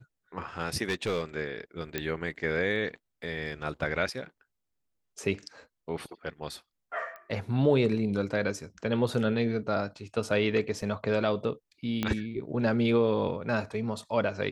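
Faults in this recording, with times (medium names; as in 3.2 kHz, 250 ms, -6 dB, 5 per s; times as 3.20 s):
0.89–1.24 s: clipped -24.5 dBFS
1.98 s: pop -14 dBFS
7.16 s: pop -31 dBFS
10.82 s: dropout 4.2 ms
12.03 s: pop -14 dBFS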